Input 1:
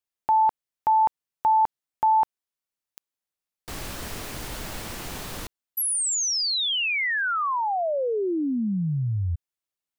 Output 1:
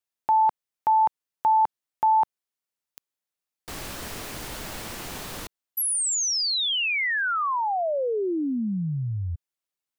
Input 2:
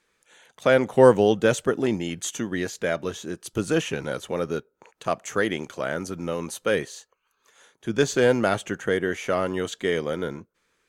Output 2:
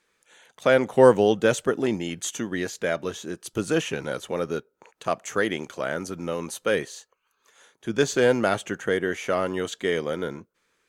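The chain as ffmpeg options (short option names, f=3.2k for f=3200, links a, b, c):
-af "lowshelf=f=130:g=-5"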